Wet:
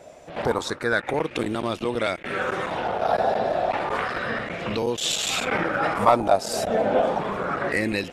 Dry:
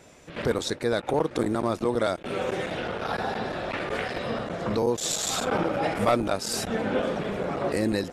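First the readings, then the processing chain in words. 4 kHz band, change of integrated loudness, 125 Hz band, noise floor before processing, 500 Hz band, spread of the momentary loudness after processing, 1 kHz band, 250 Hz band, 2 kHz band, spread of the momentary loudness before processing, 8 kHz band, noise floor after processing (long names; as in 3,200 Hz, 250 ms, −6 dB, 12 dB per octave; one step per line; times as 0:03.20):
+3.5 dB, +3.0 dB, −1.0 dB, −46 dBFS, +2.5 dB, 6 LU, +6.0 dB, −0.5 dB, +6.0 dB, 6 LU, 0.0 dB, −43 dBFS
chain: auto-filter bell 0.3 Hz 620–3,000 Hz +15 dB
level −1 dB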